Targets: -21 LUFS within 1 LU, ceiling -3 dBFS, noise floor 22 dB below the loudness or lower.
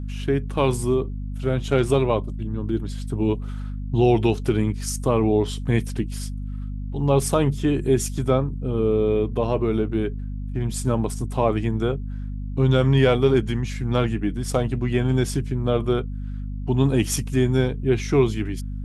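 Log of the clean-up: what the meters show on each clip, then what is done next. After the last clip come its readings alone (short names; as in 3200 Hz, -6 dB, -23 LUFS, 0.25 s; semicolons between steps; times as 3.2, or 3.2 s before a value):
hum 50 Hz; harmonics up to 250 Hz; hum level -27 dBFS; loudness -23.0 LUFS; peak -5.0 dBFS; loudness target -21.0 LUFS
-> notches 50/100/150/200/250 Hz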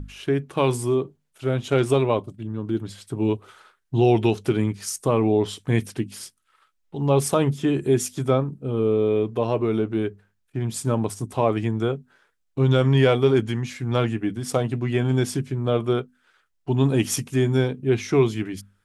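hum none; loudness -23.0 LUFS; peak -5.5 dBFS; loudness target -21.0 LUFS
-> gain +2 dB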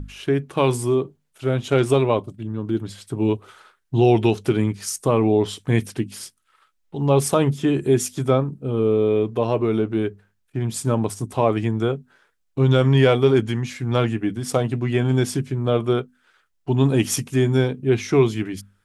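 loudness -21.0 LUFS; peak -3.5 dBFS; noise floor -69 dBFS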